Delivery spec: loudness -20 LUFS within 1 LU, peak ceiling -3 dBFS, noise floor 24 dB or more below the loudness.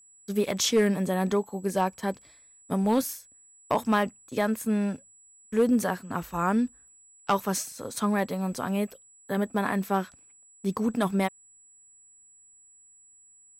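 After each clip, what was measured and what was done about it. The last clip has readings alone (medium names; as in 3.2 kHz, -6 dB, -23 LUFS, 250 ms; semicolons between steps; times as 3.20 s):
clipped samples 0.3%; clipping level -15.5 dBFS; steady tone 7.8 kHz; tone level -54 dBFS; loudness -28.0 LUFS; peak level -15.5 dBFS; loudness target -20.0 LUFS
-> clip repair -15.5 dBFS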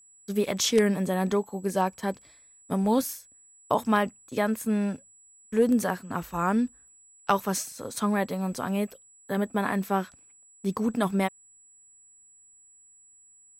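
clipped samples 0.0%; steady tone 7.8 kHz; tone level -54 dBFS
-> band-stop 7.8 kHz, Q 30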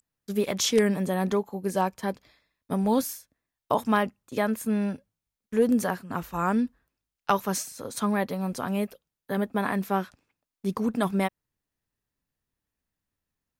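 steady tone not found; loudness -27.5 LUFS; peak level -6.5 dBFS; loudness target -20.0 LUFS
-> trim +7.5 dB; peak limiter -3 dBFS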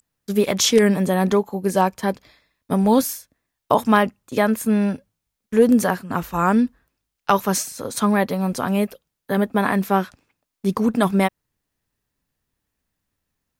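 loudness -20.5 LUFS; peak level -3.0 dBFS; noise floor -81 dBFS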